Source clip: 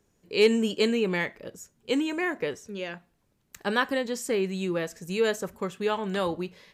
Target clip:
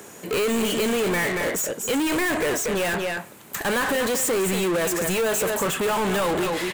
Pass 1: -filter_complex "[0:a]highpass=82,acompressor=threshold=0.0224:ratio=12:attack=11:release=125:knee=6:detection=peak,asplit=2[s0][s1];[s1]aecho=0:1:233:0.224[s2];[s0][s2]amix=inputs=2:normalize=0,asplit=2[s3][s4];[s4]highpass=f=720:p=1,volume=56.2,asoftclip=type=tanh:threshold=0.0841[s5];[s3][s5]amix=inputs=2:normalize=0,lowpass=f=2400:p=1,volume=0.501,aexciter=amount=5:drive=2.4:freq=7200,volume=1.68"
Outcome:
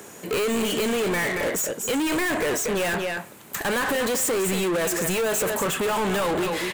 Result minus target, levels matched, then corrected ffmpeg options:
compression: peak gain reduction +6 dB
-filter_complex "[0:a]highpass=82,acompressor=threshold=0.0473:ratio=12:attack=11:release=125:knee=6:detection=peak,asplit=2[s0][s1];[s1]aecho=0:1:233:0.224[s2];[s0][s2]amix=inputs=2:normalize=0,asplit=2[s3][s4];[s4]highpass=f=720:p=1,volume=56.2,asoftclip=type=tanh:threshold=0.0841[s5];[s3][s5]amix=inputs=2:normalize=0,lowpass=f=2400:p=1,volume=0.501,aexciter=amount=5:drive=2.4:freq=7200,volume=1.68"

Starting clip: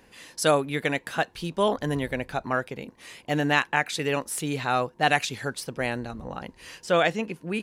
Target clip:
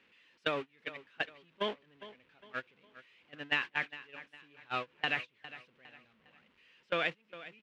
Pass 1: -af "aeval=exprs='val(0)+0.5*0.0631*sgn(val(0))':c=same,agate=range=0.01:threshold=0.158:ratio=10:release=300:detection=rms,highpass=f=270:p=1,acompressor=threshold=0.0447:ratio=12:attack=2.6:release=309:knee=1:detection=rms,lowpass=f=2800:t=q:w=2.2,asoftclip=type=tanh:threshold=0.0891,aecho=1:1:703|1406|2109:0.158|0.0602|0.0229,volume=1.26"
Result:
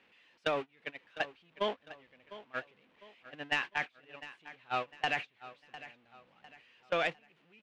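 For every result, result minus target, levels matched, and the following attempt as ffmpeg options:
echo 296 ms late; saturation: distortion +17 dB; 1 kHz band +3.0 dB
-af "aeval=exprs='val(0)+0.5*0.0631*sgn(val(0))':c=same,agate=range=0.01:threshold=0.158:ratio=10:release=300:detection=rms,highpass=f=270:p=1,acompressor=threshold=0.0447:ratio=12:attack=2.6:release=309:knee=1:detection=rms,lowpass=f=2800:t=q:w=2.2,asoftclip=type=tanh:threshold=0.0891,aecho=1:1:407|814|1221:0.158|0.0602|0.0229,volume=1.26"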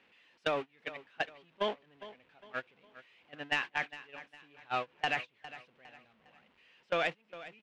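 saturation: distortion +17 dB; 1 kHz band +3.0 dB
-af "aeval=exprs='val(0)+0.5*0.0631*sgn(val(0))':c=same,agate=range=0.01:threshold=0.158:ratio=10:release=300:detection=rms,highpass=f=270:p=1,acompressor=threshold=0.0447:ratio=12:attack=2.6:release=309:knee=1:detection=rms,lowpass=f=2800:t=q:w=2.2,asoftclip=type=tanh:threshold=0.251,aecho=1:1:407|814|1221:0.158|0.0602|0.0229,volume=1.26"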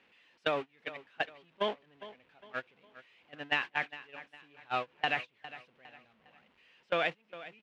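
1 kHz band +2.5 dB
-af "aeval=exprs='val(0)+0.5*0.0631*sgn(val(0))':c=same,agate=range=0.01:threshold=0.158:ratio=10:release=300:detection=rms,highpass=f=270:p=1,acompressor=threshold=0.0447:ratio=12:attack=2.6:release=309:knee=1:detection=rms,lowpass=f=2800:t=q:w=2.2,equalizer=f=740:w=2.1:g=-7.5,asoftclip=type=tanh:threshold=0.251,aecho=1:1:407|814|1221:0.158|0.0602|0.0229,volume=1.26"

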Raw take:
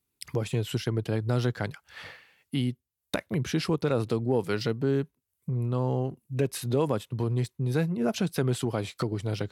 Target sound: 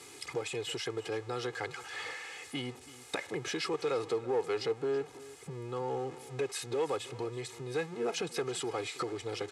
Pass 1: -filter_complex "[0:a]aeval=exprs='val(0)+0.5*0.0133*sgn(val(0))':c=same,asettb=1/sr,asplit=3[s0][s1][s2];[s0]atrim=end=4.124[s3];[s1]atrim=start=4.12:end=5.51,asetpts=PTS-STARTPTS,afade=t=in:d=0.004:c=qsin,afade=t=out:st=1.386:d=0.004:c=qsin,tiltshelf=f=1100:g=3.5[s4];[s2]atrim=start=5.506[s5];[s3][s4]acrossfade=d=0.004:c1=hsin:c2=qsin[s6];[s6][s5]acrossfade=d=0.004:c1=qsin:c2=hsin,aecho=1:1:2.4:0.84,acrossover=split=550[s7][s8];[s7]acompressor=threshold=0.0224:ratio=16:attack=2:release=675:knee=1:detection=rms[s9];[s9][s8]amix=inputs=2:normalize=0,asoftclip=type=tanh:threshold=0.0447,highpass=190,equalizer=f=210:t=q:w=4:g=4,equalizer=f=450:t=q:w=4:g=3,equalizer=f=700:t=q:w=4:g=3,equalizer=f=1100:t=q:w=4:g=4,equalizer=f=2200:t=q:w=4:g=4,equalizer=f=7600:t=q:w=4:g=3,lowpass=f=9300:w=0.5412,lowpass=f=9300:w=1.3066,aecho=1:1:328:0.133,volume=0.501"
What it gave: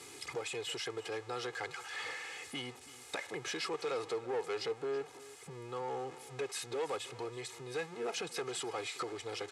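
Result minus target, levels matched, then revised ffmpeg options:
compression: peak gain reduction +7.5 dB; saturation: distortion +8 dB
-filter_complex "[0:a]aeval=exprs='val(0)+0.5*0.0133*sgn(val(0))':c=same,asettb=1/sr,asplit=3[s0][s1][s2];[s0]atrim=end=4.124[s3];[s1]atrim=start=4.12:end=5.51,asetpts=PTS-STARTPTS,afade=t=in:d=0.004:c=qsin,afade=t=out:st=1.386:d=0.004:c=qsin,tiltshelf=f=1100:g=3.5[s4];[s2]atrim=start=5.506[s5];[s3][s4]acrossfade=d=0.004:c1=hsin:c2=qsin[s6];[s6][s5]acrossfade=d=0.004:c1=qsin:c2=hsin,aecho=1:1:2.4:0.84,acrossover=split=550[s7][s8];[s7]acompressor=threshold=0.0562:ratio=16:attack=2:release=675:knee=1:detection=rms[s9];[s9][s8]amix=inputs=2:normalize=0,asoftclip=type=tanh:threshold=0.112,highpass=190,equalizer=f=210:t=q:w=4:g=4,equalizer=f=450:t=q:w=4:g=3,equalizer=f=700:t=q:w=4:g=3,equalizer=f=1100:t=q:w=4:g=4,equalizer=f=2200:t=q:w=4:g=4,equalizer=f=7600:t=q:w=4:g=3,lowpass=f=9300:w=0.5412,lowpass=f=9300:w=1.3066,aecho=1:1:328:0.133,volume=0.501"

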